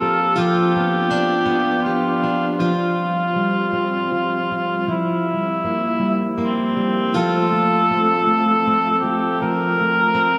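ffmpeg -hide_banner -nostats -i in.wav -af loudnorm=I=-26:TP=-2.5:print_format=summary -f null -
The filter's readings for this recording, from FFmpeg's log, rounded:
Input Integrated:    -18.8 LUFS
Input True Peak:      -5.9 dBTP
Input LRA:             3.4 LU
Input Threshold:     -28.8 LUFS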